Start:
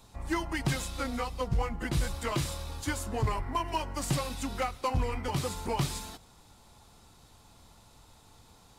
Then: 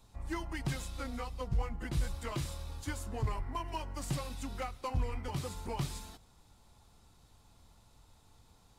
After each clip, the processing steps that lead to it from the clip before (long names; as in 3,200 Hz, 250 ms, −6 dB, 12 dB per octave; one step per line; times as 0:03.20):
low-shelf EQ 110 Hz +7 dB
level −8 dB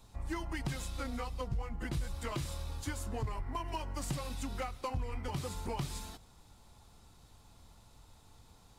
downward compressor 3 to 1, threshold −37 dBFS, peak gain reduction 8.5 dB
level +3 dB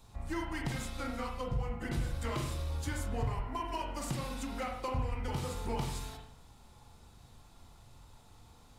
convolution reverb RT60 0.65 s, pre-delay 39 ms, DRR 1 dB